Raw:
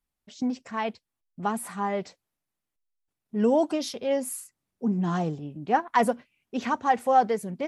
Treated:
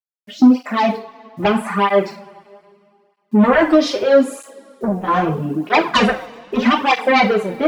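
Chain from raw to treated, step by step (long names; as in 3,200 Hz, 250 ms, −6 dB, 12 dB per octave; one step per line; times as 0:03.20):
high-pass filter 150 Hz 12 dB per octave
noise reduction from a noise print of the clip's start 10 dB
low-pass filter 4,400 Hz 12 dB per octave
high-shelf EQ 2,200 Hz −6 dB
in parallel at +3 dB: downward compressor, threshold −32 dBFS, peak gain reduction 15.5 dB
on the sum: bit reduction 11 bits
sine wavefolder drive 11 dB, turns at −7.5 dBFS
coupled-rooms reverb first 0.32 s, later 2.2 s, from −22 dB, DRR 1 dB
through-zero flanger with one copy inverted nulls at 0.79 Hz, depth 5.8 ms
level −1 dB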